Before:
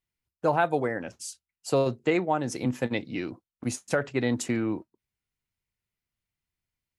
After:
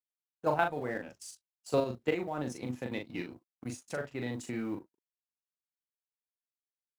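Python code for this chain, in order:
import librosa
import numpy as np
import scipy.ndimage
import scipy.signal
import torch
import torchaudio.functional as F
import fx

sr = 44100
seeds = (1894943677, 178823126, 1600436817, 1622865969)

y = fx.law_mismatch(x, sr, coded='A')
y = fx.level_steps(y, sr, step_db=11)
y = fx.doubler(y, sr, ms=40.0, db=-5.0)
y = y * librosa.db_to_amplitude(-3.0)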